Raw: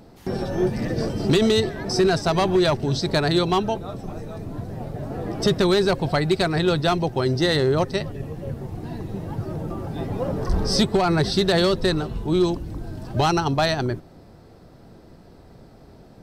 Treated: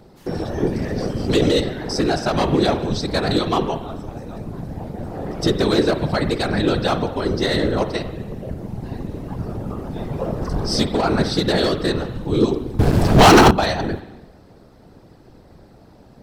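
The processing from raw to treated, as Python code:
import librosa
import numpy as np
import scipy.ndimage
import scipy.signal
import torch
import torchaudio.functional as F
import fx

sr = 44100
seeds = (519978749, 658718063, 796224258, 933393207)

y = fx.rev_spring(x, sr, rt60_s=1.0, pass_ms=(44,), chirp_ms=50, drr_db=8.5)
y = fx.whisperise(y, sr, seeds[0])
y = fx.leveller(y, sr, passes=5, at=(12.79, 13.51))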